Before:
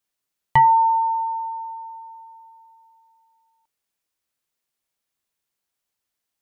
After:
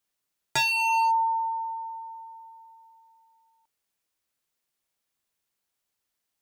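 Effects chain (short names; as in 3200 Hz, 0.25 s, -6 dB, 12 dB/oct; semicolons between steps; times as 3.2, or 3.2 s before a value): wavefolder -19 dBFS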